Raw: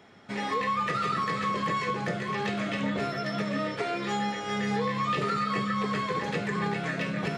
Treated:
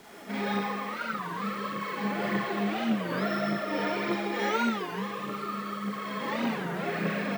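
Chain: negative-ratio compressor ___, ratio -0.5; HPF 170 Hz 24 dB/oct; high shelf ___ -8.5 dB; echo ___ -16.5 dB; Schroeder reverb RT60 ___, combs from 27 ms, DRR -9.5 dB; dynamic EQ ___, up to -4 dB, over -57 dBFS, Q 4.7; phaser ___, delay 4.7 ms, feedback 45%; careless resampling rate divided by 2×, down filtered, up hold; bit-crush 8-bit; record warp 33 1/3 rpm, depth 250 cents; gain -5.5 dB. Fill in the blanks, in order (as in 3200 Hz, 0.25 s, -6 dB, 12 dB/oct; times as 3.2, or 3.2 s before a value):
-34 dBFS, 4500 Hz, 0.253 s, 2.3 s, 6500 Hz, 1.7 Hz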